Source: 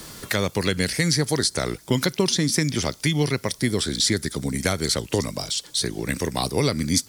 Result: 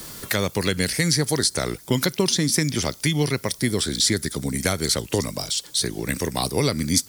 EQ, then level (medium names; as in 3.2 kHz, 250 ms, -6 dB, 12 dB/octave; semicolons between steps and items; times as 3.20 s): treble shelf 12 kHz +10 dB; 0.0 dB